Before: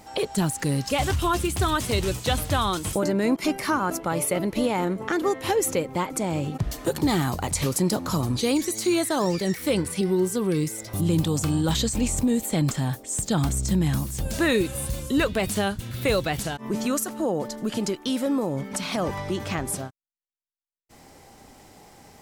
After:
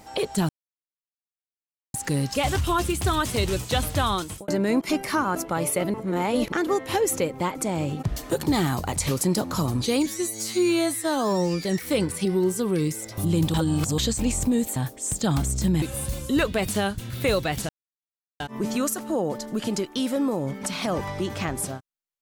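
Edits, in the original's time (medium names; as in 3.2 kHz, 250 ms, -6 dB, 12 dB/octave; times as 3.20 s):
0.49 s: insert silence 1.45 s
2.69–3.03 s: fade out
4.49–5.07 s: reverse
8.61–9.40 s: stretch 2×
11.30–11.74 s: reverse
12.52–12.83 s: delete
13.89–14.63 s: delete
16.50 s: insert silence 0.71 s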